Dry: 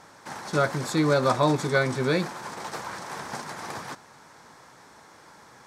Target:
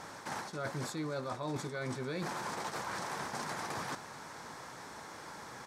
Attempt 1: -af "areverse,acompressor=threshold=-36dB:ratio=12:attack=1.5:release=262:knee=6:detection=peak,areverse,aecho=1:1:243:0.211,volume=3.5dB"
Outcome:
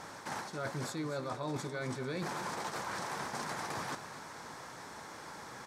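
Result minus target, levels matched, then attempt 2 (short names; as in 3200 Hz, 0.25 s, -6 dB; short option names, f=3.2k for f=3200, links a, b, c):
echo-to-direct +11 dB
-af "areverse,acompressor=threshold=-36dB:ratio=12:attack=1.5:release=262:knee=6:detection=peak,areverse,aecho=1:1:243:0.0596,volume=3.5dB"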